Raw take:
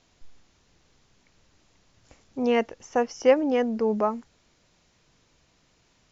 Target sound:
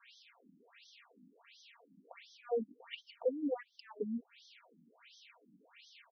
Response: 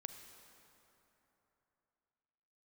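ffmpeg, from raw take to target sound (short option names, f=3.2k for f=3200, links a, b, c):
-af "acompressor=threshold=-38dB:ratio=5,aecho=1:1:4.3:0.66,asoftclip=type=tanh:threshold=-28dB,equalizer=f=2.5k:t=o:w=0.73:g=8,afftfilt=real='re*between(b*sr/1024,220*pow(4500/220,0.5+0.5*sin(2*PI*1.4*pts/sr))/1.41,220*pow(4500/220,0.5+0.5*sin(2*PI*1.4*pts/sr))*1.41)':imag='im*between(b*sr/1024,220*pow(4500/220,0.5+0.5*sin(2*PI*1.4*pts/sr))/1.41,220*pow(4500/220,0.5+0.5*sin(2*PI*1.4*pts/sr))*1.41)':win_size=1024:overlap=0.75,volume=6.5dB"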